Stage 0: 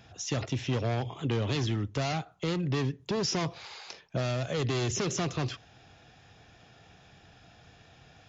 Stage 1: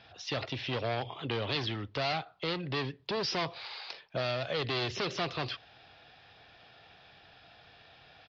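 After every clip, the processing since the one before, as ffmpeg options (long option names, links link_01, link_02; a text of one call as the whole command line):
ffmpeg -i in.wav -af "firequalizer=gain_entry='entry(190,0);entry(570,9);entry(4600,13);entry(6800,-14)':delay=0.05:min_phase=1,volume=-8.5dB" out.wav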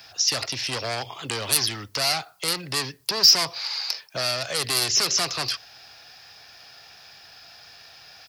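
ffmpeg -i in.wav -filter_complex "[0:a]acrossover=split=200|850[link_01][link_02][link_03];[link_03]aeval=exprs='0.133*sin(PI/2*1.58*val(0)/0.133)':channel_layout=same[link_04];[link_01][link_02][link_04]amix=inputs=3:normalize=0,aexciter=amount=14.8:drive=2.9:freq=5200" out.wav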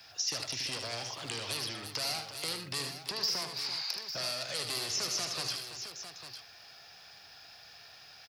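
ffmpeg -i in.wav -filter_complex "[0:a]acrossover=split=860|2400|5700[link_01][link_02][link_03][link_04];[link_01]acompressor=threshold=-36dB:ratio=4[link_05];[link_02]acompressor=threshold=-41dB:ratio=4[link_06];[link_03]acompressor=threshold=-30dB:ratio=4[link_07];[link_04]acompressor=threshold=-30dB:ratio=4[link_08];[link_05][link_06][link_07][link_08]amix=inputs=4:normalize=0,aecho=1:1:77|123|335|851:0.447|0.133|0.282|0.299,acrossover=split=590|6500[link_09][link_10][link_11];[link_11]alimiter=limit=-17.5dB:level=0:latency=1:release=464[link_12];[link_09][link_10][link_12]amix=inputs=3:normalize=0,volume=-7dB" out.wav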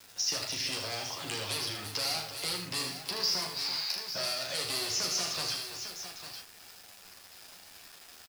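ffmpeg -i in.wav -filter_complex "[0:a]acrusher=bits=7:mix=0:aa=0.000001,asplit=2[link_01][link_02];[link_02]aecho=0:1:11|38:0.596|0.501[link_03];[link_01][link_03]amix=inputs=2:normalize=0" out.wav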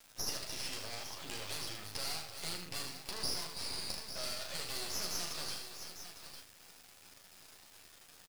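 ffmpeg -i in.wav -af "aeval=exprs='max(val(0),0)':channel_layout=same,volume=-3dB" out.wav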